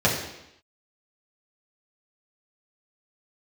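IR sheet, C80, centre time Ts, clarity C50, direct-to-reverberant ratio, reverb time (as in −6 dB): 7.0 dB, 38 ms, 4.5 dB, −6.0 dB, 0.85 s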